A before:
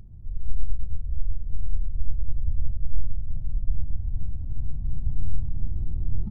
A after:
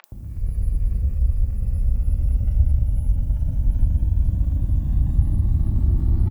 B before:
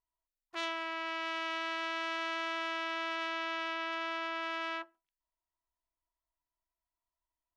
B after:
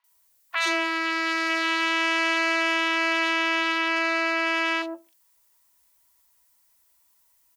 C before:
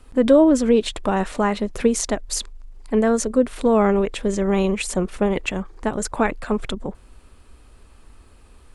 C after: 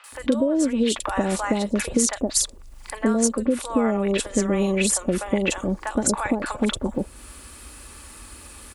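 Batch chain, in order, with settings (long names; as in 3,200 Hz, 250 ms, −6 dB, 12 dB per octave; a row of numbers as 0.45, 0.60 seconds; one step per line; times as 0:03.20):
high-pass filter 51 Hz 12 dB per octave
high-shelf EQ 7,700 Hz +10 dB
comb filter 3.5 ms, depth 32%
downward compressor 16 to 1, threshold −22 dBFS
three-band delay without the direct sound mids, highs, lows 40/120 ms, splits 740/3,300 Hz
one half of a high-frequency compander encoder only
loudness normalisation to −23 LKFS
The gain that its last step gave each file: +14.0, +13.5, +5.5 decibels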